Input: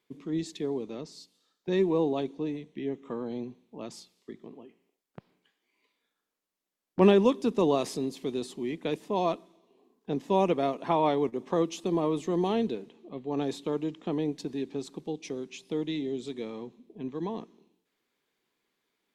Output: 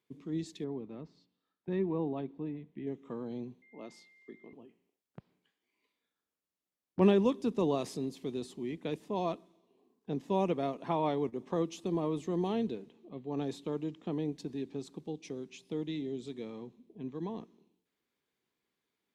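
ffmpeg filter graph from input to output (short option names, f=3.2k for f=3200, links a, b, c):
-filter_complex "[0:a]asettb=1/sr,asplit=3[a][b][c];[a]atrim=end=0.644[d];[b]atrim=start=0.64:end=2.87,asetpts=PTS-STARTPTS,afade=t=in:d=0.004:c=qsin,afade=t=out:st=2.226:d=0.004:c=qsin,lowpass=2.1k,equalizer=f=480:t=o:w=0.82:g=-4[e];[c]atrim=start=2.866[f];[d][e]acrossfade=d=0.004:c1=hsin:c2=qsin[g];[g][f]acrossfade=d=0.004:c1=qsin:c2=hsin,asettb=1/sr,asplit=3[h][i][j];[h]atrim=end=3.624[k];[i]atrim=start=3.62:end=4.53,asetpts=PTS-STARTPTS,afade=t=in:d=0.004:c=qsin,afade=t=out:st=0.906:d=0.004:c=qsin,highpass=260,aemphasis=mode=reproduction:type=cd,aeval=exprs='val(0)+0.002*sin(2*PI*2100*n/s)':c=same[l];[j]atrim=start=4.526[m];[k][l]acrossfade=d=0.004:c1=hsin:c2=qsin[n];[n][m]acrossfade=d=0.004:c1=qsin:c2=hsin,highpass=54,lowshelf=f=150:g=10.5,volume=-7dB"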